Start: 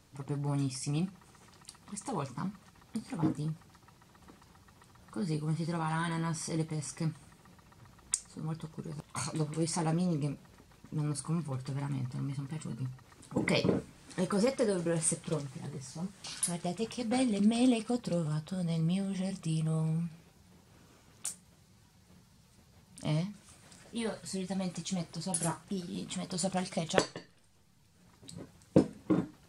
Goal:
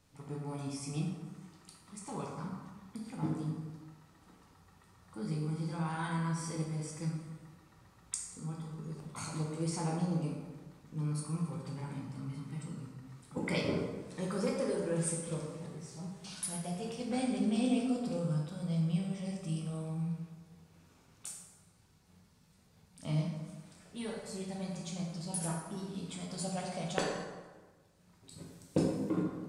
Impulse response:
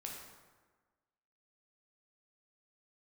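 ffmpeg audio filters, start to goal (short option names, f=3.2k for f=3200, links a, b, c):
-filter_complex "[0:a]asettb=1/sr,asplit=3[a][b][c];[a]atrim=end=28.314[d];[b]atrim=start=28.31:end=29.1,asetpts=PTS-STARTPTS,afade=t=in:d=0.004:c=qsin,afade=t=out:st=0.786:d=0.004:c=qsin,highshelf=f=3.3k:g=10.5[e];[c]atrim=start=29.096[f];[d][e]acrossfade=d=0.004:c1=hsin:c2=qsin[g];[g][f]acrossfade=d=0.004:c1=qsin:c2=hsin[h];[1:a]atrim=start_sample=2205[i];[h][i]afir=irnorm=-1:irlink=0,volume=-1.5dB"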